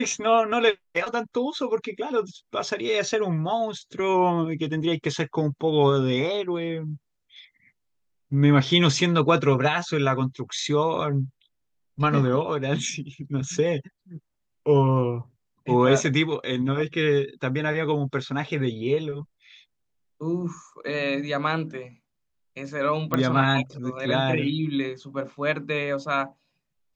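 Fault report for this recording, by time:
23.14 pop -10 dBFS

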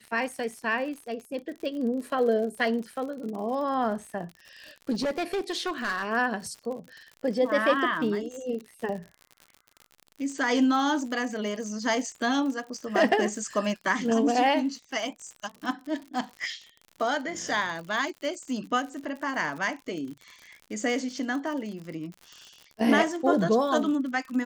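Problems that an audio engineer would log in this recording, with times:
crackle 68/s -36 dBFS
4.92–6.09 clipped -24.5 dBFS

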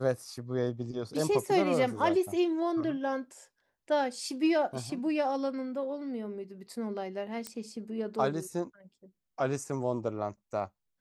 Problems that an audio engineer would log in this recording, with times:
7.47 pop -21 dBFS

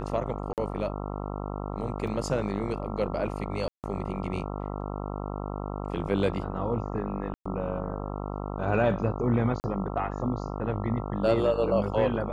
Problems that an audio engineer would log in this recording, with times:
buzz 50 Hz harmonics 27 -34 dBFS
0.53–0.58 gap 48 ms
2.07 gap 4 ms
3.68–3.84 gap 0.158 s
7.34–7.46 gap 0.115 s
9.6–9.64 gap 39 ms

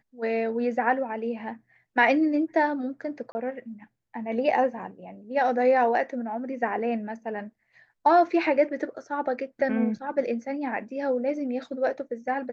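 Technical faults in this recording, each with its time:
3.32–3.35 gap 30 ms

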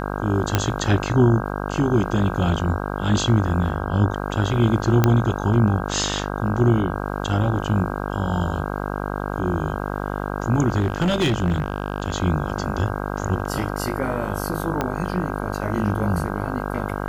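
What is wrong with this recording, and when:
buzz 50 Hz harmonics 32 -27 dBFS
0.55 pop -3 dBFS
5.04 pop -3 dBFS
10.79–12.16 clipped -15.5 dBFS
14.81 pop -9 dBFS

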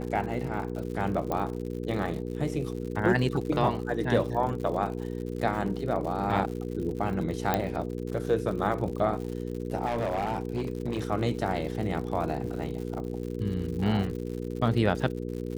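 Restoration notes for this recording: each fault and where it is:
crackle 110/s -36 dBFS
hum 60 Hz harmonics 8 -34 dBFS
1.32 pop -17 dBFS
7.54 pop -11 dBFS
9.85–11.07 clipped -24.5 dBFS

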